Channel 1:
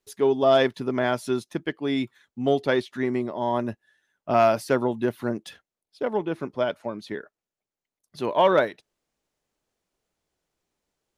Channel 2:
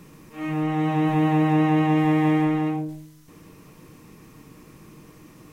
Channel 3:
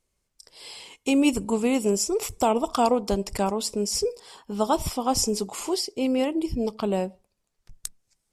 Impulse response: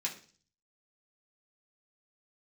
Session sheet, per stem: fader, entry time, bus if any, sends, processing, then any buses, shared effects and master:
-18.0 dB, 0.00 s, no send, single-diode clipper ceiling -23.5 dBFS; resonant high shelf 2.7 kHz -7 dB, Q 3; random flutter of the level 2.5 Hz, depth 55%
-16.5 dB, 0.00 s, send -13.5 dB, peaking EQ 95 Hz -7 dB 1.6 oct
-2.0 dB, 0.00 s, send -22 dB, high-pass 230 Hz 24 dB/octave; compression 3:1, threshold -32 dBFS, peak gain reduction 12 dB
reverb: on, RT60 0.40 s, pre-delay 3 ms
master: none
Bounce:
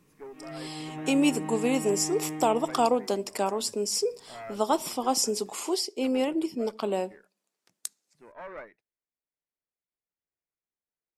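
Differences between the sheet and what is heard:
stem 2: missing peaking EQ 95 Hz -7 dB 1.6 oct; stem 3: missing compression 3:1, threshold -32 dBFS, peak gain reduction 12 dB

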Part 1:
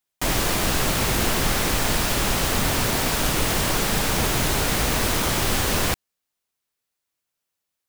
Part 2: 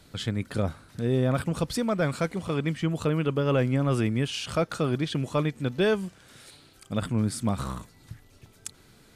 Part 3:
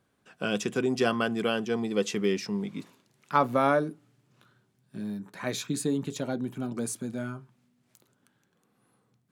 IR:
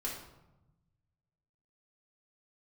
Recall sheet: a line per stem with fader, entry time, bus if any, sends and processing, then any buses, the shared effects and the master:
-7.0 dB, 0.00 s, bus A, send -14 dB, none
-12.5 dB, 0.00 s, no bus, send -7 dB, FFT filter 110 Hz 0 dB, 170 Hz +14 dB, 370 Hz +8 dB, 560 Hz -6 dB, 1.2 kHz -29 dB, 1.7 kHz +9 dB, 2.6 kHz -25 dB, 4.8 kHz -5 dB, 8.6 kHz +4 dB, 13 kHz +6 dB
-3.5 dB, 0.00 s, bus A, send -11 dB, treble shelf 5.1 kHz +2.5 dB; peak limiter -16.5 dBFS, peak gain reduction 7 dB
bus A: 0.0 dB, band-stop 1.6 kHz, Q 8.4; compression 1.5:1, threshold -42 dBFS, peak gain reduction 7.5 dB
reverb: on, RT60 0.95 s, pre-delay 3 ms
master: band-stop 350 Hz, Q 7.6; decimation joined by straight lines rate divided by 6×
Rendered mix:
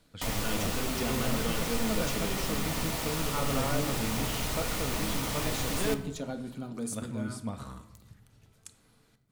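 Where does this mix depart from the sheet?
stem 2: missing FFT filter 110 Hz 0 dB, 170 Hz +14 dB, 370 Hz +8 dB, 560 Hz -6 dB, 1.2 kHz -29 dB, 1.7 kHz +9 dB, 2.6 kHz -25 dB, 4.8 kHz -5 dB, 8.6 kHz +4 dB, 13 kHz +6 dB; master: missing decimation joined by straight lines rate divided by 6×

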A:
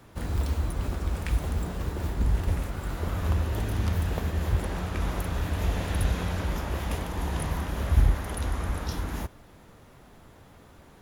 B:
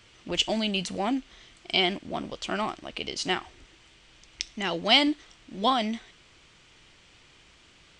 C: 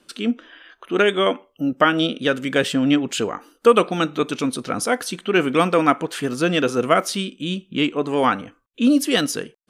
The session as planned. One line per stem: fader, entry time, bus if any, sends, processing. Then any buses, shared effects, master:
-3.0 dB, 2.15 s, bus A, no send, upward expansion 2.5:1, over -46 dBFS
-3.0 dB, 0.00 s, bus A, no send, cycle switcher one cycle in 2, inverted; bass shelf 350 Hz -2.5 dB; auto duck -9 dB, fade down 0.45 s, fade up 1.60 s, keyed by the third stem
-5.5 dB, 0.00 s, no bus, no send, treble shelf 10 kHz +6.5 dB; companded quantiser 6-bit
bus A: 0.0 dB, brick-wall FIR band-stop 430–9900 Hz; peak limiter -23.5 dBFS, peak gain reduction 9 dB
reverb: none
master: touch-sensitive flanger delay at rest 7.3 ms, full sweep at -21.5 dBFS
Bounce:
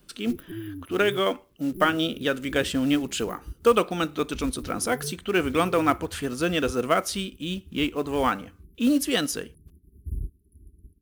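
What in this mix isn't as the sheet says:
stem B -3.0 dB -> +5.0 dB; master: missing touch-sensitive flanger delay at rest 7.3 ms, full sweep at -21.5 dBFS

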